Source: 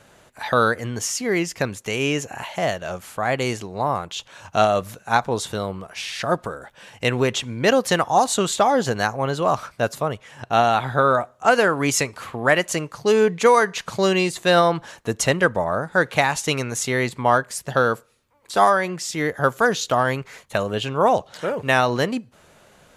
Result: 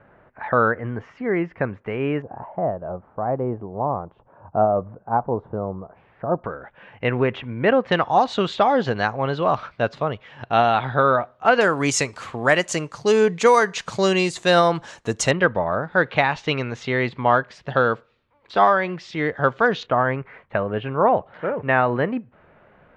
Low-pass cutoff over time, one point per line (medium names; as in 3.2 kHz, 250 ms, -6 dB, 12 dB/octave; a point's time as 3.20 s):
low-pass 24 dB/octave
1.9 kHz
from 2.22 s 1 kHz
from 6.44 s 2.4 kHz
from 7.92 s 3.9 kHz
from 11.61 s 8.4 kHz
from 15.31 s 3.7 kHz
from 19.83 s 2.2 kHz